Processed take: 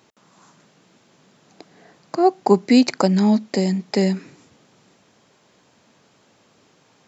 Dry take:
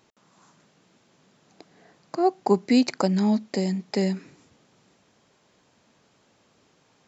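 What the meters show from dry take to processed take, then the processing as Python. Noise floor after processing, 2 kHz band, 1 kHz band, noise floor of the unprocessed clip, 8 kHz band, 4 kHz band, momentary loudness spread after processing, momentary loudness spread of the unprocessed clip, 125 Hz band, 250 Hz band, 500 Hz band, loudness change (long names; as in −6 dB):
−59 dBFS, +5.5 dB, +5.5 dB, −64 dBFS, can't be measured, +5.5 dB, 7 LU, 7 LU, +5.5 dB, +5.5 dB, +5.5 dB, +5.5 dB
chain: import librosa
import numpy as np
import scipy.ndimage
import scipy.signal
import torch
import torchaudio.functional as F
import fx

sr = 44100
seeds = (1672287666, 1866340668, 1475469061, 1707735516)

y = scipy.signal.sosfilt(scipy.signal.butter(2, 84.0, 'highpass', fs=sr, output='sos'), x)
y = F.gain(torch.from_numpy(y), 5.5).numpy()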